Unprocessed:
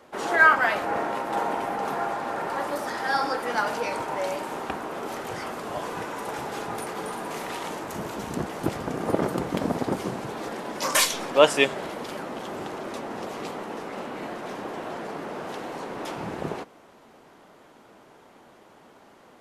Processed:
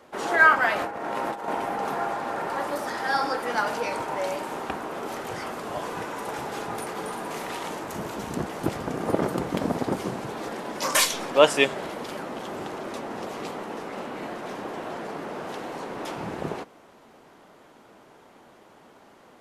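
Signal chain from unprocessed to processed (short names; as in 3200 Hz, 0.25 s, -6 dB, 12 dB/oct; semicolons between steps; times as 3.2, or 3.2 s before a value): 0.79–1.48 negative-ratio compressor -30 dBFS, ratio -0.5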